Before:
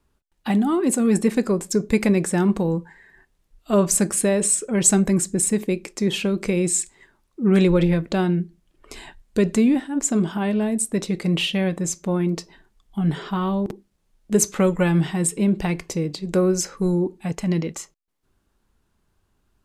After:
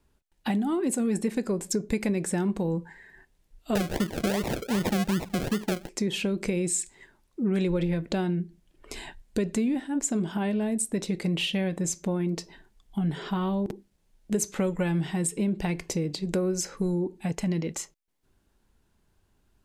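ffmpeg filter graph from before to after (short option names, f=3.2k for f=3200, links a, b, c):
-filter_complex "[0:a]asettb=1/sr,asplit=3[a][b][c];[a]atrim=end=3.754[d];[b]atrim=start=3.75:end=5.89,asetpts=PTS-STARTPTS,afade=t=in:d=0.004:c=qsin,afade=t=out:st=2.136:d=0.004:c=qsin,bass=f=250:g=3,treble=f=4k:g=-5,acrusher=samples=38:mix=1:aa=0.000001:lfo=1:lforange=22.8:lforate=2.6[e];[c]atrim=start=5.886[f];[d][e]acrossfade=d=0.004:c1=hsin:c2=qsin[g];[g][f]acrossfade=d=0.004:c1=qsin:c2=hsin,equalizer=f=1.2k:t=o:w=0.31:g=-5.5,acompressor=threshold=-26dB:ratio=3"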